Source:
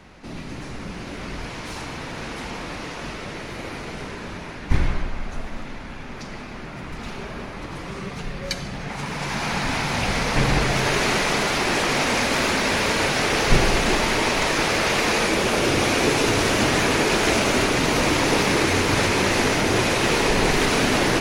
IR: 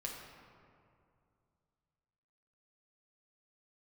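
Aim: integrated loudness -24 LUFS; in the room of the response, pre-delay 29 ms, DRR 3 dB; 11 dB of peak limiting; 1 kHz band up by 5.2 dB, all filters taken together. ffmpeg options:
-filter_complex "[0:a]equalizer=f=1000:t=o:g=6.5,alimiter=limit=0.224:level=0:latency=1,asplit=2[s0][s1];[1:a]atrim=start_sample=2205,adelay=29[s2];[s1][s2]afir=irnorm=-1:irlink=0,volume=0.75[s3];[s0][s3]amix=inputs=2:normalize=0,volume=0.75"

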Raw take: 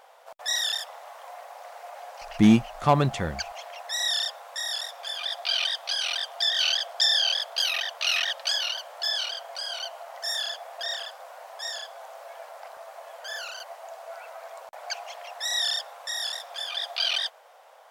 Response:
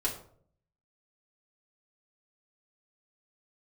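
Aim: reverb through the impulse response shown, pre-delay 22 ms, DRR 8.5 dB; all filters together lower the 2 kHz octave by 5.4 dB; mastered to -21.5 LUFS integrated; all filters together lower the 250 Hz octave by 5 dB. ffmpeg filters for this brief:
-filter_complex "[0:a]equalizer=f=250:t=o:g=-6,equalizer=f=2000:t=o:g=-7,asplit=2[s0][s1];[1:a]atrim=start_sample=2205,adelay=22[s2];[s1][s2]afir=irnorm=-1:irlink=0,volume=0.2[s3];[s0][s3]amix=inputs=2:normalize=0,volume=2.11"

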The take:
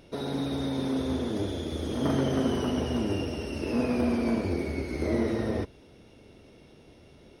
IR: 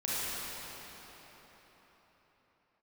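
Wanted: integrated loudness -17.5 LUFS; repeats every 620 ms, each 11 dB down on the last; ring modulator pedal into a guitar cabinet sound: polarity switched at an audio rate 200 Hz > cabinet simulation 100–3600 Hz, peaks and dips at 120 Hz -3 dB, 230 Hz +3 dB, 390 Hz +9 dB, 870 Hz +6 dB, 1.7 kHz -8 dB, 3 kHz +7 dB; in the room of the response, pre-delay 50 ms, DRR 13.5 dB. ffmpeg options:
-filter_complex "[0:a]aecho=1:1:620|1240|1860:0.282|0.0789|0.0221,asplit=2[s0][s1];[1:a]atrim=start_sample=2205,adelay=50[s2];[s1][s2]afir=irnorm=-1:irlink=0,volume=0.0841[s3];[s0][s3]amix=inputs=2:normalize=0,aeval=exprs='val(0)*sgn(sin(2*PI*200*n/s))':c=same,highpass=100,equalizer=f=120:t=q:w=4:g=-3,equalizer=f=230:t=q:w=4:g=3,equalizer=f=390:t=q:w=4:g=9,equalizer=f=870:t=q:w=4:g=6,equalizer=f=1700:t=q:w=4:g=-8,equalizer=f=3000:t=q:w=4:g=7,lowpass=f=3600:w=0.5412,lowpass=f=3600:w=1.3066,volume=2.99"

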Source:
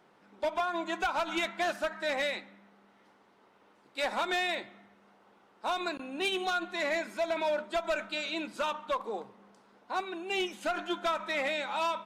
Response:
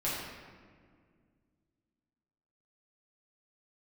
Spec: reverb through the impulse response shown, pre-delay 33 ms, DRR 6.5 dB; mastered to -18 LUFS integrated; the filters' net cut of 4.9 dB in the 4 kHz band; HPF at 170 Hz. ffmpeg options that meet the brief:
-filter_complex "[0:a]highpass=170,equalizer=f=4000:t=o:g=-6,asplit=2[s0][s1];[1:a]atrim=start_sample=2205,adelay=33[s2];[s1][s2]afir=irnorm=-1:irlink=0,volume=0.211[s3];[s0][s3]amix=inputs=2:normalize=0,volume=5.31"

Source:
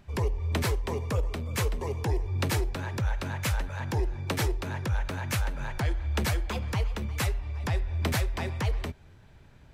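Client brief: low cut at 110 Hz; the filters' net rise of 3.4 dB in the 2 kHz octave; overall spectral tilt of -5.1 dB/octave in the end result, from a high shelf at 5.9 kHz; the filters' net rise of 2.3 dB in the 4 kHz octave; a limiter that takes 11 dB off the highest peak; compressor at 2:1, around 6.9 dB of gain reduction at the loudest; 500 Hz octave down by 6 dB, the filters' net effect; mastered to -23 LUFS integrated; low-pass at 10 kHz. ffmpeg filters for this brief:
-af "highpass=110,lowpass=10000,equalizer=f=500:t=o:g=-8,equalizer=f=2000:t=o:g=4.5,equalizer=f=4000:t=o:g=4,highshelf=f=5900:g=-7,acompressor=threshold=0.0126:ratio=2,volume=8.91,alimiter=limit=0.224:level=0:latency=1"

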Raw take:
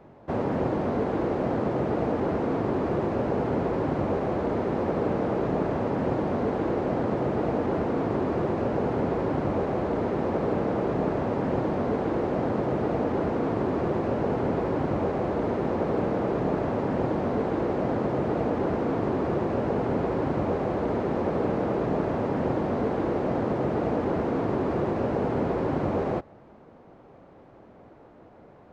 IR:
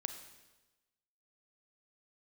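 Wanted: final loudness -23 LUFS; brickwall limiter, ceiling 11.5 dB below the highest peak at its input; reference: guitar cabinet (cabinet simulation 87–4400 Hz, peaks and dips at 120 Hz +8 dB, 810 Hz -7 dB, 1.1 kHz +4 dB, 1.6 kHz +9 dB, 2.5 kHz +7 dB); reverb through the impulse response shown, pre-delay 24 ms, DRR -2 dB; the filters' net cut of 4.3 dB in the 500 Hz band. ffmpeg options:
-filter_complex "[0:a]equalizer=f=500:t=o:g=-5,alimiter=level_in=1.26:limit=0.0631:level=0:latency=1,volume=0.794,asplit=2[s0][s1];[1:a]atrim=start_sample=2205,adelay=24[s2];[s1][s2]afir=irnorm=-1:irlink=0,volume=1.41[s3];[s0][s3]amix=inputs=2:normalize=0,highpass=87,equalizer=f=120:t=q:w=4:g=8,equalizer=f=810:t=q:w=4:g=-7,equalizer=f=1100:t=q:w=4:g=4,equalizer=f=1600:t=q:w=4:g=9,equalizer=f=2500:t=q:w=4:g=7,lowpass=f=4400:w=0.5412,lowpass=f=4400:w=1.3066,volume=2"

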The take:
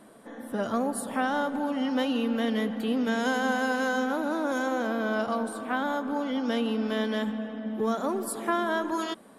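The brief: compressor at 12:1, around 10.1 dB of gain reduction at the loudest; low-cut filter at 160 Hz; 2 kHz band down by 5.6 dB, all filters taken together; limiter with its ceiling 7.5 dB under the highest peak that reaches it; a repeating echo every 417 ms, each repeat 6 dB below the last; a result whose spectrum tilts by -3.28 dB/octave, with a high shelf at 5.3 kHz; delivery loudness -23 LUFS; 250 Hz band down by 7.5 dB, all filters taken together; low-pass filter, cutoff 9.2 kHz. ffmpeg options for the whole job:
-af "highpass=160,lowpass=9200,equalizer=f=250:t=o:g=-7.5,equalizer=f=2000:t=o:g=-9,highshelf=f=5300:g=6,acompressor=threshold=0.0158:ratio=12,alimiter=level_in=2.82:limit=0.0631:level=0:latency=1,volume=0.355,aecho=1:1:417|834|1251|1668|2085|2502:0.501|0.251|0.125|0.0626|0.0313|0.0157,volume=7.94"

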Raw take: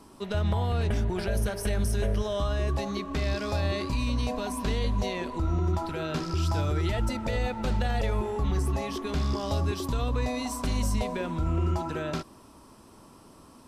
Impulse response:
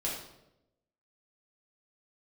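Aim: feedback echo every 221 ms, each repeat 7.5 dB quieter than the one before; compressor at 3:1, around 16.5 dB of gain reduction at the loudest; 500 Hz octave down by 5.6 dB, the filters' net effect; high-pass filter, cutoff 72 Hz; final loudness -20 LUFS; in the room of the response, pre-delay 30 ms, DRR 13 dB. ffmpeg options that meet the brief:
-filter_complex "[0:a]highpass=72,equalizer=f=500:t=o:g=-7.5,acompressor=threshold=0.00355:ratio=3,aecho=1:1:221|442|663|884|1105:0.422|0.177|0.0744|0.0312|0.0131,asplit=2[s0][s1];[1:a]atrim=start_sample=2205,adelay=30[s2];[s1][s2]afir=irnorm=-1:irlink=0,volume=0.133[s3];[s0][s3]amix=inputs=2:normalize=0,volume=21.1"

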